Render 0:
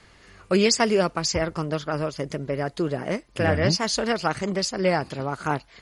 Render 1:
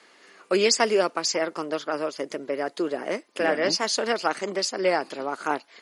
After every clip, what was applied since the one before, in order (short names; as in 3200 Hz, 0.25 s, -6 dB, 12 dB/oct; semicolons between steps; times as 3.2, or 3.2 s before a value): HPF 270 Hz 24 dB/oct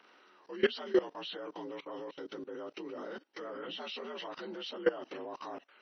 inharmonic rescaling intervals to 84%; level quantiser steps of 20 dB; gain -2 dB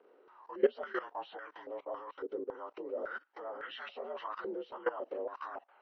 stepped band-pass 3.6 Hz 450–1700 Hz; gain +10 dB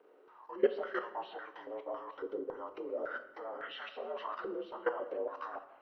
shoebox room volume 430 m³, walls mixed, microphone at 0.49 m